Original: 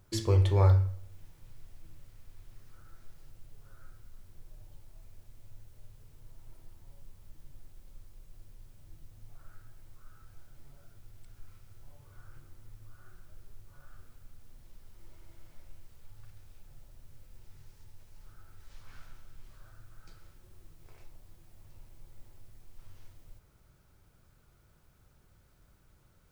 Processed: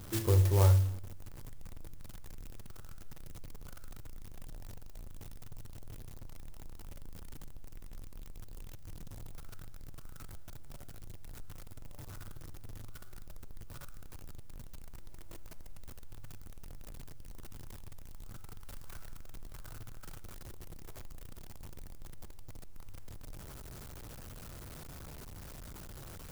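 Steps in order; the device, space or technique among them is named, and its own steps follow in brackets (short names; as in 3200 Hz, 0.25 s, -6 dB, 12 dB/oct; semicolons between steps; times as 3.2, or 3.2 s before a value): early CD player with a faulty converter (zero-crossing step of -39.5 dBFS; clock jitter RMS 0.1 ms); gain -2 dB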